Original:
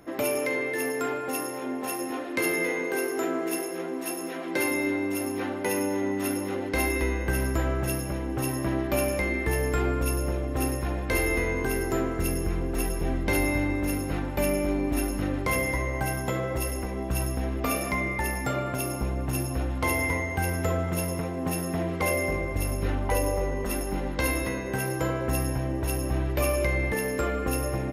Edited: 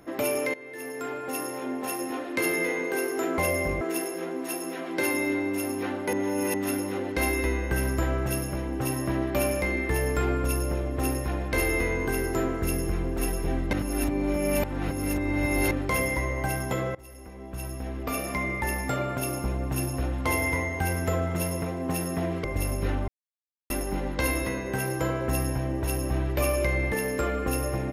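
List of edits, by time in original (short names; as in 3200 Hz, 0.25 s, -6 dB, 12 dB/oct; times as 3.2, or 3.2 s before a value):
0.54–1.52 fade in, from -18.5 dB
5.7–6.11 reverse
13.3–15.28 reverse
16.52–18.26 fade in, from -23.5 dB
22.01–22.44 move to 3.38
23.08–23.7 mute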